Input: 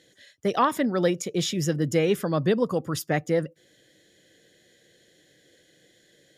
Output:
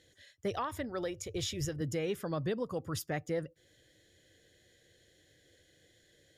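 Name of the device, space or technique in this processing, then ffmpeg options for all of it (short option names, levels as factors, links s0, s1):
car stereo with a boomy subwoofer: -filter_complex "[0:a]lowshelf=f=120:t=q:w=1.5:g=11,alimiter=limit=0.106:level=0:latency=1:release=349,asettb=1/sr,asplit=3[s0][s1][s2];[s0]atrim=end=0.514[s3];[s1]atrim=start=0.51:end=1.81,asetpts=PTS-STARTPTS,afade=t=in:d=0.004:c=qsin,afade=t=out:st=1.296:d=0.004:c=qsin,lowshelf=f=130:t=q:w=3:g=9.5[s4];[s2]atrim=start=1.806[s5];[s3][s4]acrossfade=d=0.004:c1=hsin:c2=qsin[s6];[s6][s5]acrossfade=d=0.004:c1=qsin:c2=hsin,volume=0.501"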